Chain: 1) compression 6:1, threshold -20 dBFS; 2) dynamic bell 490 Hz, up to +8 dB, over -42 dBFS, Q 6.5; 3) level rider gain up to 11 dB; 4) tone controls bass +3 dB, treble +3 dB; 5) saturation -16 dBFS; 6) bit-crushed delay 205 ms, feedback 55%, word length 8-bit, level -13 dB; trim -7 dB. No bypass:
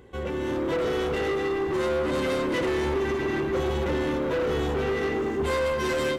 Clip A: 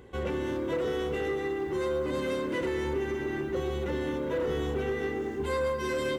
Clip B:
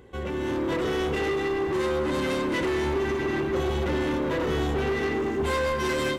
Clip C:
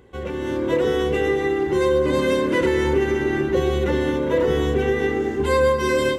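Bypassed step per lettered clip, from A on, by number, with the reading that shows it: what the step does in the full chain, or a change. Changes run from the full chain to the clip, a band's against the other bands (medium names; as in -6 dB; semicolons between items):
3, 500 Hz band +1.5 dB; 2, 500 Hz band -2.0 dB; 5, distortion -9 dB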